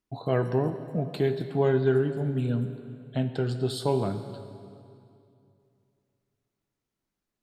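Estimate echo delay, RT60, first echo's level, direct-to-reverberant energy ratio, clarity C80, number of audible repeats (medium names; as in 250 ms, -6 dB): no echo, 2.5 s, no echo, 8.5 dB, 10.5 dB, no echo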